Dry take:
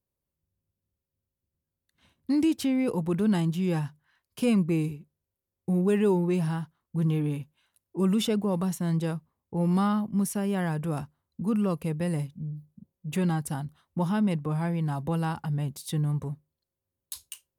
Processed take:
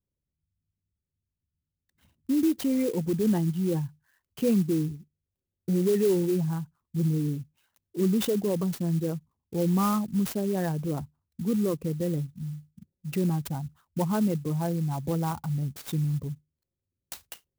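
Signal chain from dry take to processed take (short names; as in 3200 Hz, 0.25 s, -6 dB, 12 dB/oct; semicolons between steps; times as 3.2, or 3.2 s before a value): formant sharpening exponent 2; clock jitter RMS 0.051 ms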